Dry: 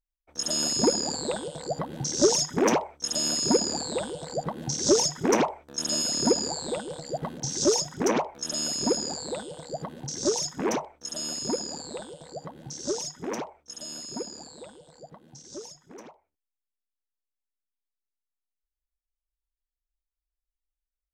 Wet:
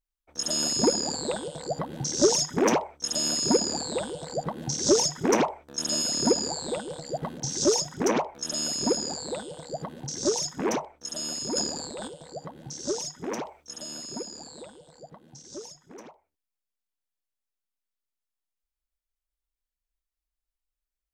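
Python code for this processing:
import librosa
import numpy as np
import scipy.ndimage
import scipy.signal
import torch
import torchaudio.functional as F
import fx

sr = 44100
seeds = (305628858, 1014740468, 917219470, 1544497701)

y = fx.transient(x, sr, attack_db=-6, sustain_db=10, at=(11.35, 12.08))
y = fx.band_squash(y, sr, depth_pct=40, at=(13.45, 14.62))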